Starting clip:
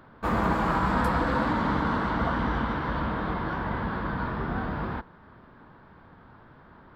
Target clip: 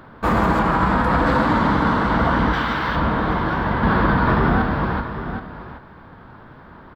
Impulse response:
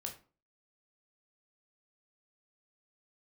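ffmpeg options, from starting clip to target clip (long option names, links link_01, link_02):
-filter_complex "[0:a]asettb=1/sr,asplit=3[link_01][link_02][link_03];[link_01]atrim=end=0.594[link_04];[link_02]atrim=start=0.59:end=1.26,asetpts=PTS-STARTPTS,afade=type=in:duration=0.004:curve=qsin,afade=type=out:start_time=0.666:duration=0.004:curve=qsin,acrossover=split=4000[link_05][link_06];[link_06]acompressor=threshold=-56dB:ratio=4:attack=1:release=60[link_07];[link_05][link_07]amix=inputs=2:normalize=0[link_08];[link_03]atrim=start=1.256[link_09];[link_04][link_08]acrossfade=duration=0.004:curve1=hsin:curve2=qsin[link_10];[link_10][link_09]acrossfade=duration=0.004:curve1=qsin:curve2=hsin,asettb=1/sr,asplit=3[link_11][link_12][link_13];[link_11]atrim=end=2.534[link_14];[link_12]atrim=start=2.53:end=2.96,asetpts=PTS-STARTPTS,afade=type=in:duration=0.004:curve=qsin,afade=type=out:start_time=0.426:duration=0.004:curve=qsin,tiltshelf=frequency=1200:gain=-7[link_15];[link_13]atrim=start=2.956[link_16];[link_14][link_15]acrossfade=duration=0.004:curve1=hsin:curve2=qsin[link_17];[link_17][link_16]acrossfade=duration=0.004:curve1=qsin:curve2=hsin,asettb=1/sr,asplit=3[link_18][link_19][link_20];[link_18]atrim=end=3.834[link_21];[link_19]atrim=start=3.83:end=4.62,asetpts=PTS-STARTPTS,afade=type=in:duration=0.004:curve=qsin,afade=type=out:start_time=0.786:duration=0.004:curve=qsin,acontrast=85[link_22];[link_20]atrim=start=4.616[link_23];[link_21][link_22]acrossfade=duration=0.004:curve1=hsin:curve2=qsin[link_24];[link_24][link_23]acrossfade=duration=0.004:curve1=qsin:curve2=hsin,aecho=1:1:776:0.211,alimiter=level_in=16.5dB:limit=-1dB:release=50:level=0:latency=1,volume=-7.5dB"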